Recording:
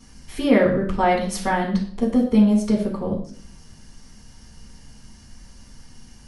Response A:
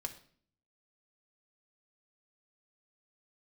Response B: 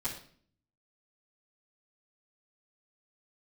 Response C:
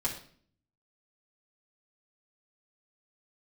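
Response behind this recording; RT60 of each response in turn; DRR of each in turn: B; 0.50, 0.50, 0.50 seconds; 4.5, −10.0, −4.5 decibels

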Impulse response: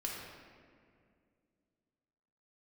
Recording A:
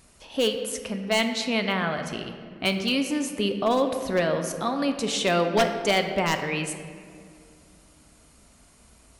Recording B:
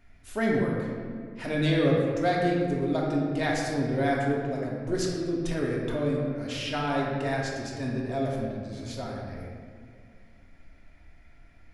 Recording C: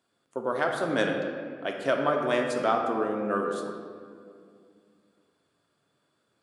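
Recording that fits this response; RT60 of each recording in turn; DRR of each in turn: B; 2.3, 2.2, 2.2 seconds; 6.0, −3.0, 1.5 decibels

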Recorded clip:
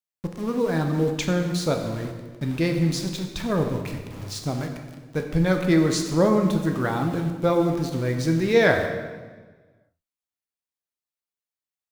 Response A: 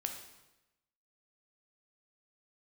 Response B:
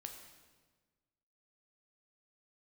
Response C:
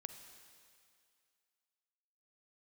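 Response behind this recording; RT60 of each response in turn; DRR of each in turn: B; 1.0, 1.4, 2.3 seconds; 3.5, 3.5, 7.5 decibels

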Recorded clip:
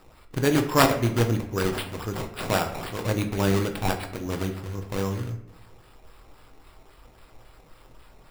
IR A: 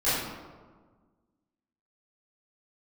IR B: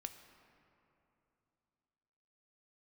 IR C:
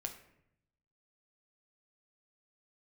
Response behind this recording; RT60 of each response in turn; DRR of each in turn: C; 1.5, 3.0, 0.75 seconds; −15.0, 7.0, 4.5 decibels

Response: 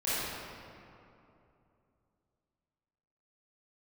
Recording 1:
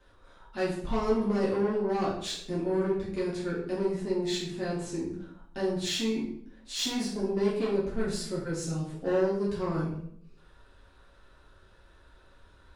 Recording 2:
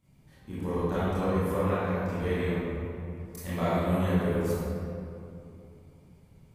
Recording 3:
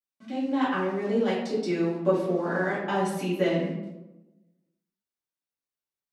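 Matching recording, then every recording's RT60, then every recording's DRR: 2; 0.65, 2.8, 1.0 seconds; −7.5, −13.0, −10.0 decibels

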